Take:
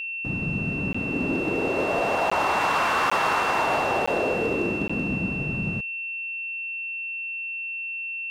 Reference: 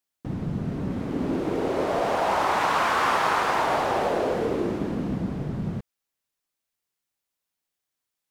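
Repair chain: clip repair -16 dBFS; band-stop 2.7 kHz, Q 30; interpolate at 0.93/2.30/3.10/4.06/4.88 s, 15 ms

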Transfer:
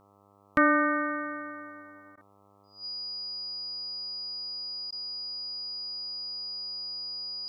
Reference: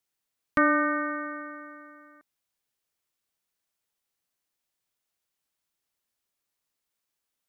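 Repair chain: de-hum 100.3 Hz, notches 13; band-stop 4.9 kHz, Q 30; interpolate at 2.16/4.91 s, 13 ms

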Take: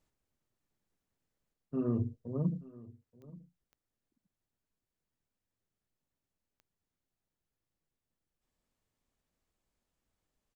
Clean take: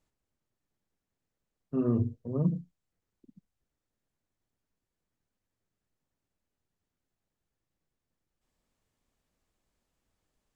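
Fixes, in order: de-click; inverse comb 880 ms -20 dB; gain correction +4.5 dB, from 1.53 s

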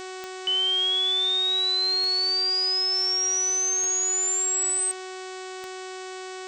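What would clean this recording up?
de-click; de-hum 373.3 Hz, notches 23; noise reduction 30 dB, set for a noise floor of -37 dBFS

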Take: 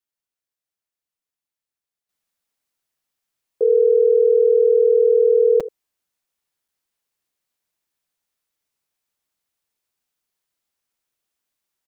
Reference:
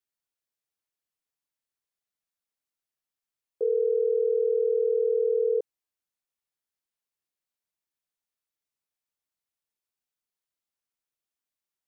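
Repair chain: interpolate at 5.60/6.68 s, 5.3 ms; inverse comb 79 ms -13.5 dB; gain correction -9 dB, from 2.09 s

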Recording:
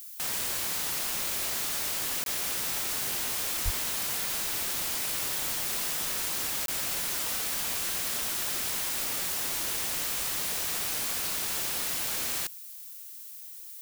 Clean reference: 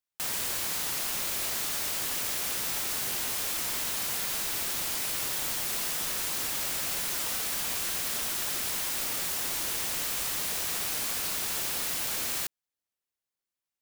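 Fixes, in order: 3.64–3.76 s: high-pass 140 Hz 24 dB/octave; interpolate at 2.24/6.66 s, 22 ms; noise reduction 30 dB, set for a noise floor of -44 dBFS

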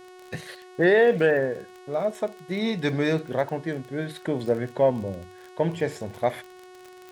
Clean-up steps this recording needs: de-click; de-hum 366.9 Hz, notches 32

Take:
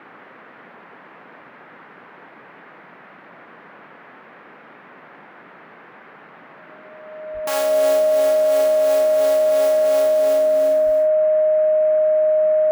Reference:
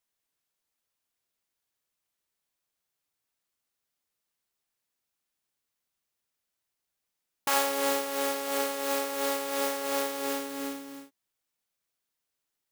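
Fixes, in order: band-stop 620 Hz, Q 30; de-plosive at 7.33/10.85 s; noise print and reduce 30 dB

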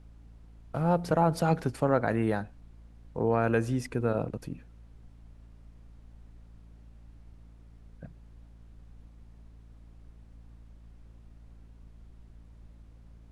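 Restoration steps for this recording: de-hum 56.1 Hz, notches 5; noise print and reduce 22 dB

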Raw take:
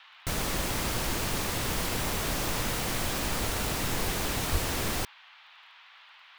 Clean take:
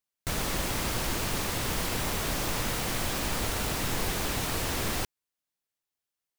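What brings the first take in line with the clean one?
de-click; 4.51–4.63 s: high-pass 140 Hz 24 dB/octave; noise print and reduce 30 dB

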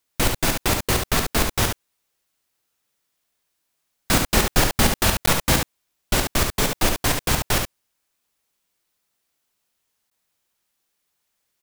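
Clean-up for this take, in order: interpolate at 5.26/10.10 s, 14 ms; inverse comb 71 ms -5.5 dB

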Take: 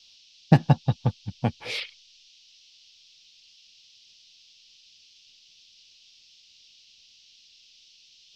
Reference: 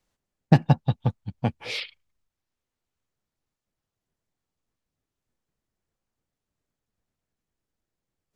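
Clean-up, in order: noise print and reduce 30 dB; trim 0 dB, from 2.40 s -3.5 dB

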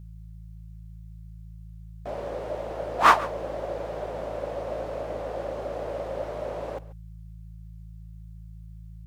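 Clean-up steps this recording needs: clip repair -7 dBFS; de-hum 54.5 Hz, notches 3; inverse comb 139 ms -18.5 dB

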